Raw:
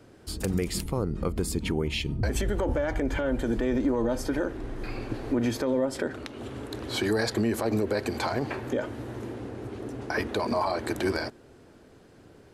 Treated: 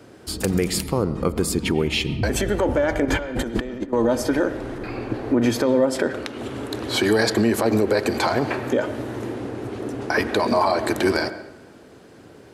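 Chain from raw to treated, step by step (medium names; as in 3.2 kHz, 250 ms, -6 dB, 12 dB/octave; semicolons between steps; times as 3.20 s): high-pass 130 Hz 6 dB/octave; 3.05–3.93 s: compressor with a negative ratio -33 dBFS, ratio -0.5; 4.78–5.42 s: treble shelf 2.9 kHz -9.5 dB; reverberation RT60 0.85 s, pre-delay 65 ms, DRR 13 dB; trim +8 dB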